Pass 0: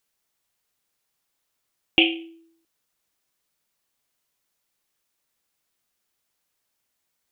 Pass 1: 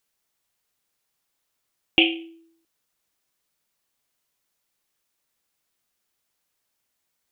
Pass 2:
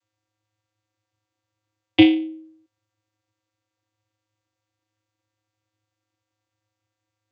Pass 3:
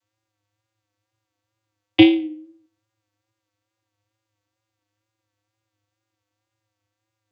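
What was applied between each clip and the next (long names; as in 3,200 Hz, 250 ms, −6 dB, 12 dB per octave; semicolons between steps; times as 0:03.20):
no processing that can be heard
channel vocoder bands 16, square 106 Hz; level +7.5 dB
tape wow and flutter 55 cents; convolution reverb RT60 0.50 s, pre-delay 25 ms, DRR 23.5 dB; level +1.5 dB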